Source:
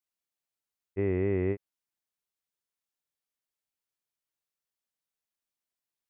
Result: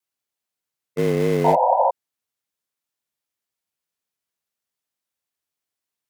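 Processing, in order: frequency shift +62 Hz; in parallel at -8.5 dB: bit crusher 5-bit; on the sum: vibrato 0.38 Hz 6.9 cents; painted sound noise, 1.44–1.91 s, 500–1000 Hz -22 dBFS; trim +5 dB

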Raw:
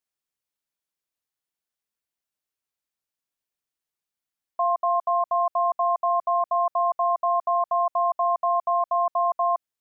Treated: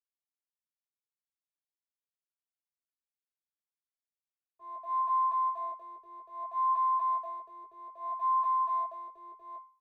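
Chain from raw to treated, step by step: companding laws mixed up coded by mu; tilt EQ +6 dB/octave; in parallel at -2.5 dB: compression 4:1, threshold -33 dBFS, peak gain reduction 11 dB; on the sum: Chebyshev shaper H 8 -19 dB, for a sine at -10 dBFS; feedback comb 530 Hz, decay 0.39 s, mix 80%; frequency shift -19 Hz; wah-wah 0.62 Hz 420–1100 Hz, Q 5.1; peak limiter -29.5 dBFS, peak gain reduction 8.5 dB; doubling 20 ms -4 dB; small resonant body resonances 420/1100 Hz, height 8 dB, ringing for 45 ms; three bands expanded up and down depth 70%

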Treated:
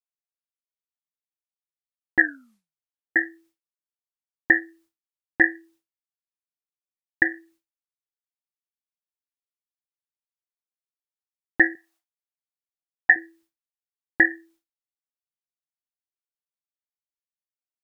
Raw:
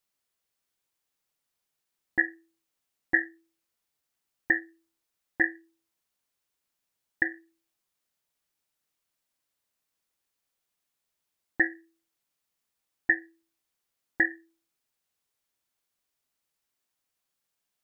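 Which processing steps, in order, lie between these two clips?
2.19 s: tape stop 0.97 s; expander -59 dBFS; 11.75–13.16 s: resonant low shelf 520 Hz -10 dB, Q 3; trim +7 dB

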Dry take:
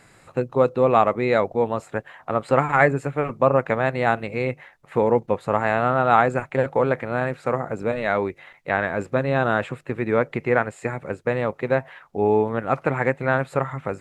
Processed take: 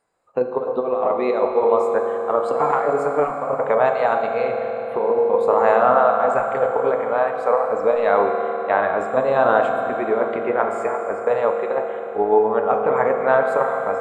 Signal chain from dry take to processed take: de-hum 47.25 Hz, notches 24; spectral noise reduction 22 dB; graphic EQ 125/500/1000/2000 Hz -9/+8/+9/-5 dB; compressor with a negative ratio -14 dBFS, ratio -0.5; reverberation RT60 4.2 s, pre-delay 3 ms, DRR 2.5 dB; trim -3.5 dB

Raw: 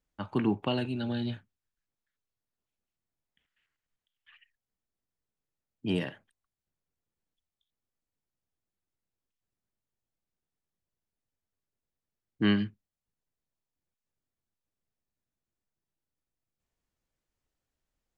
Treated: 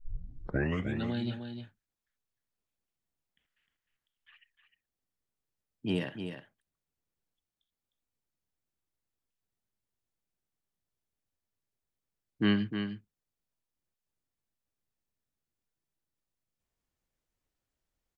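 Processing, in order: tape start-up on the opening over 1.06 s; delay 306 ms -8 dB; trim -1.5 dB

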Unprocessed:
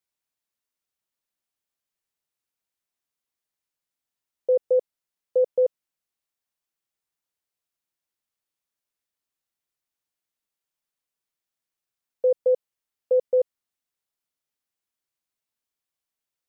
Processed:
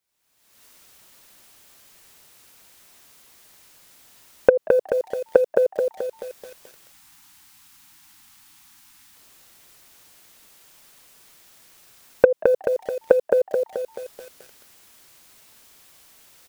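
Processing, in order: recorder AGC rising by 47 dB/s; time-frequency box 6.92–9.16 s, 330–740 Hz -28 dB; compression 2:1, threshold -16 dBFS, peak gain reduction 8 dB; saturation -6 dBFS, distortion -14 dB; frequency-shifting echo 184 ms, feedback 42%, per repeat +130 Hz, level -24 dB; bit-crushed delay 216 ms, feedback 55%, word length 8-bit, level -4 dB; trim +5 dB

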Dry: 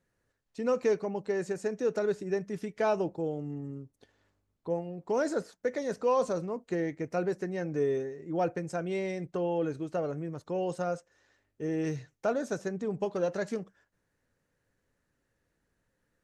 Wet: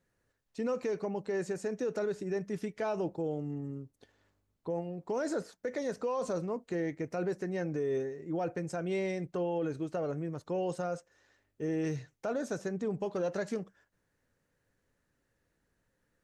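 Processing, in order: peak limiter -25.5 dBFS, peak gain reduction 8.5 dB

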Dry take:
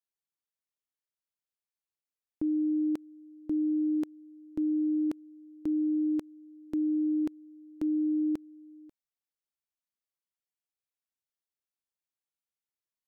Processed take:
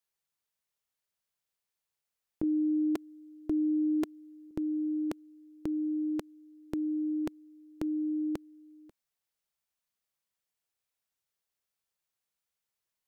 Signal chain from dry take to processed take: 2.43–4.51 s: comb 2.9 ms, depth 61%; peaking EQ 290 Hz -13 dB 0.29 oct; trim +6 dB

